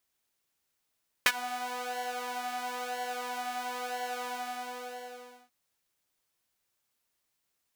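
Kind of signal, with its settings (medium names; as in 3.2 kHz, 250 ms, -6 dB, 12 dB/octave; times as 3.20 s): synth patch with pulse-width modulation B3, interval +19 st, detune 27 cents, sub -24 dB, noise -17 dB, filter highpass, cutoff 520 Hz, Q 1.8, filter decay 0.12 s, filter sustain 25%, attack 2.6 ms, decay 0.05 s, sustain -21 dB, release 1.26 s, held 2.98 s, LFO 1 Hz, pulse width 34%, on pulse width 14%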